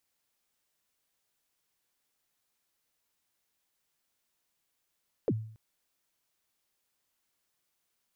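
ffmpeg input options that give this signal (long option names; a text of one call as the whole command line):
ffmpeg -f lavfi -i "aevalsrc='0.0794*pow(10,-3*t/0.56)*sin(2*PI*(550*0.048/log(110/550)*(exp(log(110/550)*min(t,0.048)/0.048)-1)+110*max(t-0.048,0)))':duration=0.28:sample_rate=44100" out.wav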